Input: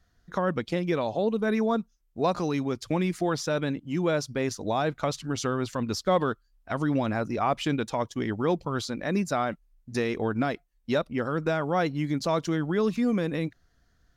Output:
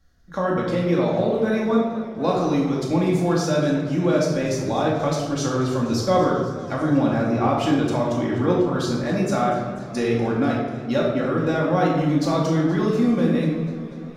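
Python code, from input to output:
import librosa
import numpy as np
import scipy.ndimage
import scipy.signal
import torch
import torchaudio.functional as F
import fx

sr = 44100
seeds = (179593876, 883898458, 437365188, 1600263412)

y = fx.peak_eq(x, sr, hz=2100.0, db=-3.0, octaves=1.5)
y = fx.room_shoebox(y, sr, seeds[0], volume_m3=610.0, walls='mixed', distance_m=2.3)
y = fx.echo_warbled(y, sr, ms=244, feedback_pct=76, rate_hz=2.8, cents=93, wet_db=-17.0)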